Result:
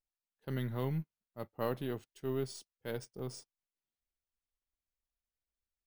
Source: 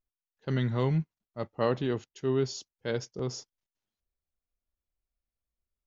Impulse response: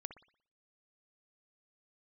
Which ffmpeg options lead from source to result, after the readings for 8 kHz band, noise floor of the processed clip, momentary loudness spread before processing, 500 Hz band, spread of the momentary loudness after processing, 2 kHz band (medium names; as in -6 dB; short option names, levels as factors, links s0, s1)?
no reading, under -85 dBFS, 12 LU, -8.0 dB, 12 LU, -8.0 dB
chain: -af "aeval=exprs='if(lt(val(0),0),0.708*val(0),val(0))':c=same,acrusher=samples=3:mix=1:aa=0.000001,volume=0.447"